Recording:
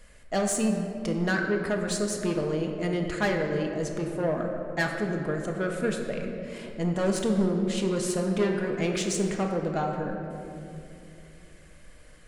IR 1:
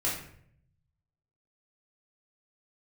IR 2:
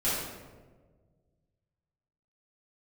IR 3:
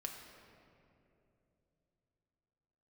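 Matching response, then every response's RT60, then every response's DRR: 3; 0.65, 1.5, 3.0 s; -7.5, -12.5, 1.5 dB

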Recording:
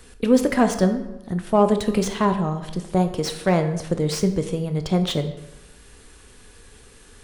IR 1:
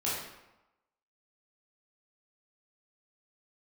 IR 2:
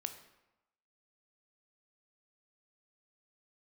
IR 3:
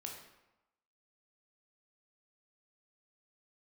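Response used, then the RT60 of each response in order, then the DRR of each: 2; 1.0, 0.95, 0.95 s; -8.5, 7.5, 0.0 dB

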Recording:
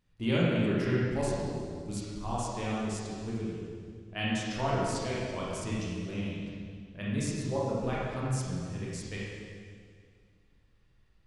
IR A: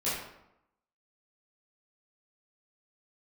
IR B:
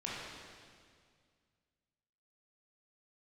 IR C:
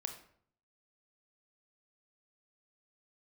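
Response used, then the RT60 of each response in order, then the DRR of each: B; 0.85, 2.0, 0.60 s; -11.5, -7.0, 5.0 dB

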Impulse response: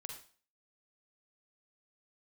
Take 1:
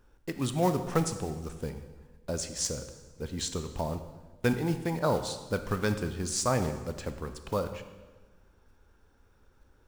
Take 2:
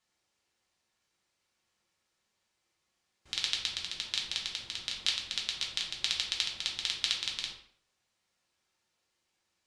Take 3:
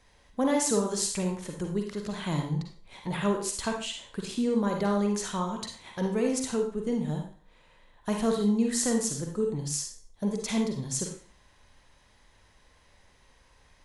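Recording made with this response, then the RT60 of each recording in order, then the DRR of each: 3; 1.3, 0.60, 0.40 s; 8.5, -2.0, 2.0 dB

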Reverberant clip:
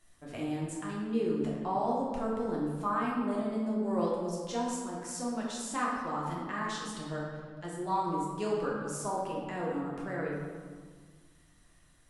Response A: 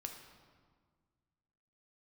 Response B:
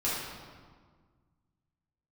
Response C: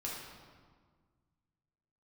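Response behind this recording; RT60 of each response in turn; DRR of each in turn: C; 1.7, 1.7, 1.7 s; 3.0, -9.5, -5.0 dB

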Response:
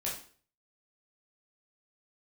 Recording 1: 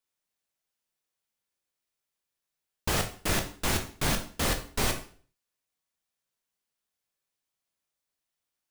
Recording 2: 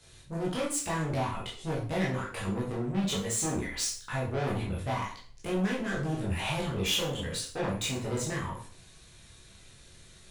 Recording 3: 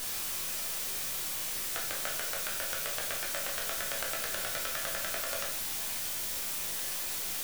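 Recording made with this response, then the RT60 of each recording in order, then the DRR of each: 2; 0.45, 0.45, 0.45 s; 4.0, -6.0, -0.5 dB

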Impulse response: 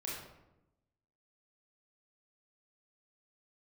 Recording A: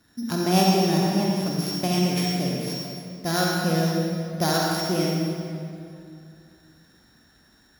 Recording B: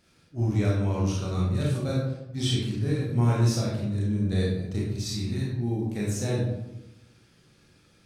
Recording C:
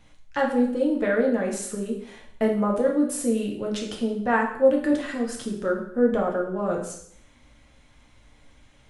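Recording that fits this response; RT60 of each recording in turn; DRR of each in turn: B; 2.5, 0.90, 0.65 s; -3.0, -5.5, -0.5 dB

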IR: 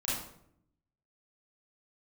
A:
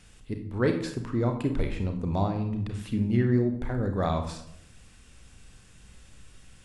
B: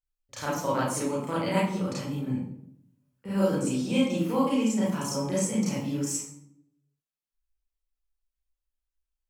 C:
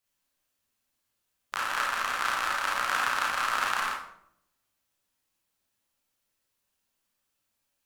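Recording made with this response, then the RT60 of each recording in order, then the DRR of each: B; 0.70, 0.70, 0.70 s; 4.5, -9.0, -4.5 dB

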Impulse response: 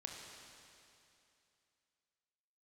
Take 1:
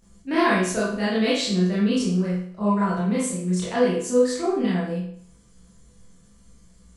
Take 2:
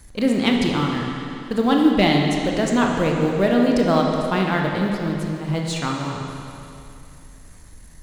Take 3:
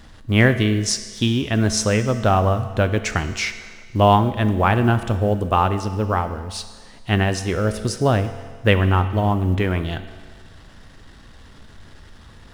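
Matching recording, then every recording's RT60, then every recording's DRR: 2; 0.60, 2.7, 1.7 s; -9.0, 0.0, 9.5 dB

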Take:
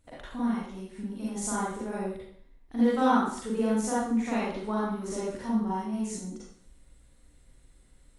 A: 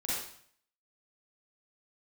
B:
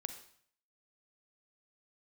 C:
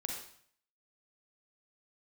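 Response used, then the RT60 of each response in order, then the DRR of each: A; 0.60, 0.60, 0.55 s; -8.5, 8.0, 0.0 dB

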